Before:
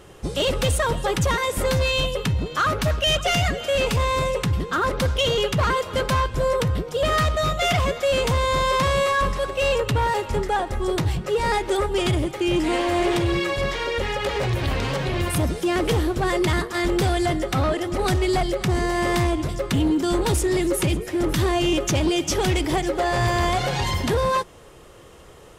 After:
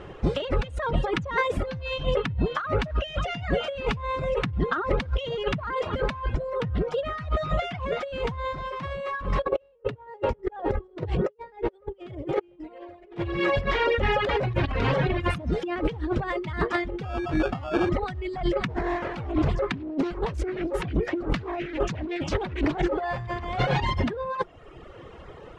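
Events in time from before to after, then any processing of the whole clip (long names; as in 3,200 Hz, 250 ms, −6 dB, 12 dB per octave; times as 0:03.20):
0:09.43–0:13.18: parametric band 460 Hz +13.5 dB 0.91 octaves
0:17.03–0:17.89: sample-rate reduction 2,000 Hz
0:18.67–0:22.92: highs frequency-modulated by the lows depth 0.7 ms
whole clip: compressor whose output falls as the input rises −25 dBFS, ratio −0.5; low-pass filter 2,500 Hz 12 dB per octave; reverb reduction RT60 1.1 s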